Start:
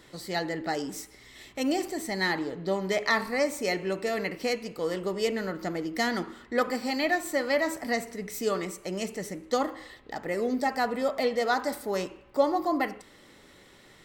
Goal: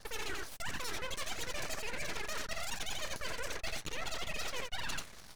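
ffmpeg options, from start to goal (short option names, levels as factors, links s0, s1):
-filter_complex "[0:a]afftfilt=real='re*pow(10,7/40*sin(2*PI*(0.74*log(max(b,1)*sr/1024/100)/log(2)-(-1.1)*(pts-256)/sr)))':imag='im*pow(10,7/40*sin(2*PI*(0.74*log(max(b,1)*sr/1024/100)/log(2)-(-1.1)*(pts-256)/sr)))':win_size=1024:overlap=0.75,acrossover=split=170[s0][s1];[s1]acompressor=threshold=0.0178:ratio=1.5[s2];[s0][s2]amix=inputs=2:normalize=0,aecho=1:1:231:0.422,areverse,acompressor=threshold=0.0126:ratio=20,areverse,asetrate=115542,aresample=44100,anlmdn=0.00158,lowpass=f=9400:w=0.5412,lowpass=f=9400:w=1.3066,aeval=exprs='abs(val(0))':c=same,volume=2"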